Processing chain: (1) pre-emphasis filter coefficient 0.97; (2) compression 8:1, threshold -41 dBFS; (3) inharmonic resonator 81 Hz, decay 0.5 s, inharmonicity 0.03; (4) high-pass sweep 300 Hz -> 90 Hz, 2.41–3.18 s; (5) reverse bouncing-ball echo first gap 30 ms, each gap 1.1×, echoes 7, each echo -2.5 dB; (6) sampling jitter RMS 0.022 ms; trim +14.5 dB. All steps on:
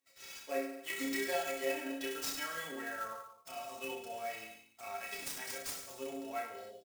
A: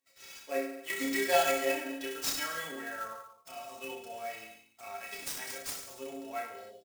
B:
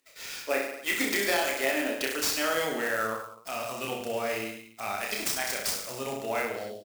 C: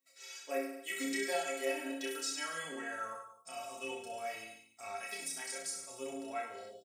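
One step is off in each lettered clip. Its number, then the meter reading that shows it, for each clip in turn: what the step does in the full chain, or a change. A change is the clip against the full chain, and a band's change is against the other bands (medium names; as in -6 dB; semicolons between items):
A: 2, mean gain reduction 1.5 dB; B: 3, 125 Hz band +5.5 dB; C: 6, 8 kHz band +3.0 dB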